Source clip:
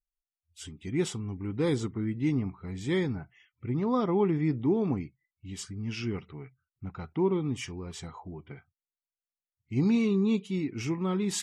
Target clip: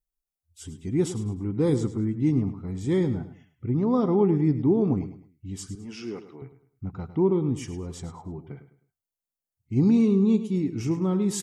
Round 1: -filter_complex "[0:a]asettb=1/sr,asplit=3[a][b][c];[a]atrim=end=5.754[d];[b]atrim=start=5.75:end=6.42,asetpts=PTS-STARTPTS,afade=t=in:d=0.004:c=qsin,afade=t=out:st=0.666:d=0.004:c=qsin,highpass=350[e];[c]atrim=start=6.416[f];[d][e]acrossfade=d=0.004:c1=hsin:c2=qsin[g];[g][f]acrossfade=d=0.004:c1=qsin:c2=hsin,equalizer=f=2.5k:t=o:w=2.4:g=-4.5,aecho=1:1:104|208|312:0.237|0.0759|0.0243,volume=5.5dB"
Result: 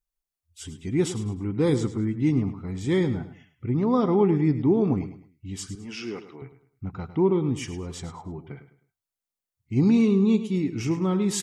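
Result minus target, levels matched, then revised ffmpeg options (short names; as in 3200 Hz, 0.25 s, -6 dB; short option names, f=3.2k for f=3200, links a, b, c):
2000 Hz band +6.5 dB
-filter_complex "[0:a]asettb=1/sr,asplit=3[a][b][c];[a]atrim=end=5.754[d];[b]atrim=start=5.75:end=6.42,asetpts=PTS-STARTPTS,afade=t=in:d=0.004:c=qsin,afade=t=out:st=0.666:d=0.004:c=qsin,highpass=350[e];[c]atrim=start=6.416[f];[d][e]acrossfade=d=0.004:c1=hsin:c2=qsin[g];[g][f]acrossfade=d=0.004:c1=qsin:c2=hsin,equalizer=f=2.5k:t=o:w=2.4:g=-12,aecho=1:1:104|208|312:0.237|0.0759|0.0243,volume=5.5dB"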